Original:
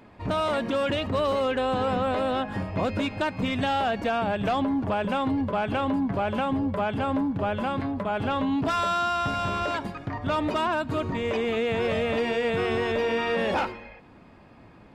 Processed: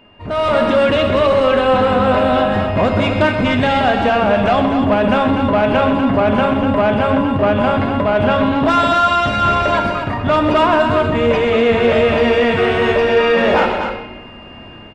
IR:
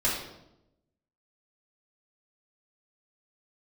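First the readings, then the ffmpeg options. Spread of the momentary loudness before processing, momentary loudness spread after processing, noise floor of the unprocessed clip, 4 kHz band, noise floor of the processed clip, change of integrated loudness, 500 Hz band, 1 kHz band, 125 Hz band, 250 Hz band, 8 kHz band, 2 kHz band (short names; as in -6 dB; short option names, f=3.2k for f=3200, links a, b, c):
4 LU, 3 LU, -51 dBFS, +11.0 dB, -36 dBFS, +12.0 dB, +13.5 dB, +11.5 dB, +11.5 dB, +11.0 dB, n/a, +12.5 dB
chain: -filter_complex "[0:a]asplit=2[a][b];[b]highshelf=f=6.8k:g=12[c];[1:a]atrim=start_sample=2205[d];[c][d]afir=irnorm=-1:irlink=0,volume=-15dB[e];[a][e]amix=inputs=2:normalize=0,asoftclip=type=tanh:threshold=-18dB,aeval=exprs='val(0)+0.00398*sin(2*PI*2800*n/s)':c=same,bass=f=250:g=-1,treble=f=4k:g=-10,aecho=1:1:128.3|244.9:0.282|0.447,dynaudnorm=f=160:g=5:m=11.5dB,aresample=22050,aresample=44100"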